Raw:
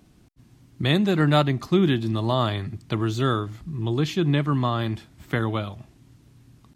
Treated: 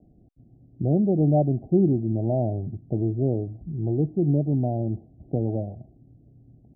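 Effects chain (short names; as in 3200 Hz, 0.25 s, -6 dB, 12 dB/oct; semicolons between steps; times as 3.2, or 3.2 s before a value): steep low-pass 760 Hz 96 dB/oct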